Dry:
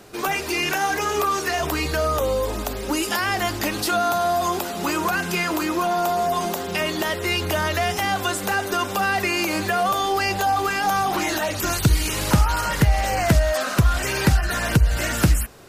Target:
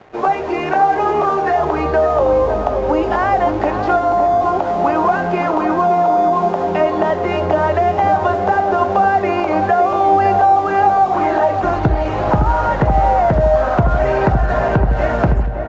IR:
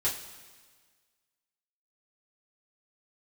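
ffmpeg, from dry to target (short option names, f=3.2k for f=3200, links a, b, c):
-filter_complex "[0:a]lowpass=1.4k,equalizer=f=710:t=o:w=1.1:g=10.5,acompressor=threshold=-16dB:ratio=6,aeval=exprs='sgn(val(0))*max(abs(val(0))-0.00668,0)':c=same,asplit=2[a][b];[b]adelay=562,lowpass=f=990:p=1,volume=-5dB,asplit=2[c][d];[d]adelay=562,lowpass=f=990:p=1,volume=0.53,asplit=2[e][f];[f]adelay=562,lowpass=f=990:p=1,volume=0.53,asplit=2[g][h];[h]adelay=562,lowpass=f=990:p=1,volume=0.53,asplit=2[i][j];[j]adelay=562,lowpass=f=990:p=1,volume=0.53,asplit=2[k][l];[l]adelay=562,lowpass=f=990:p=1,volume=0.53,asplit=2[m][n];[n]adelay=562,lowpass=f=990:p=1,volume=0.53[o];[a][c][e][g][i][k][m][o]amix=inputs=8:normalize=0,asplit=2[p][q];[1:a]atrim=start_sample=2205[r];[q][r]afir=irnorm=-1:irlink=0,volume=-17dB[s];[p][s]amix=inputs=2:normalize=0,volume=4dB" -ar 16000 -c:a sbc -b:a 192k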